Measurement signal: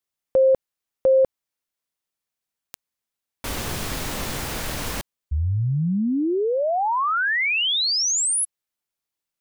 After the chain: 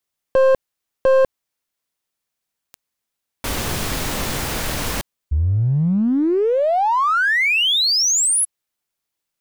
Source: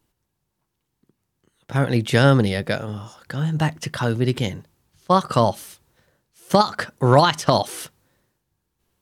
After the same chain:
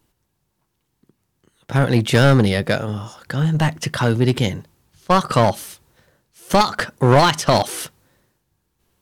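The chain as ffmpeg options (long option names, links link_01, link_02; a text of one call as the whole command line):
ffmpeg -i in.wav -af "acontrast=50,aeval=exprs='clip(val(0),-1,0.2)':channel_layout=same,volume=-1dB" out.wav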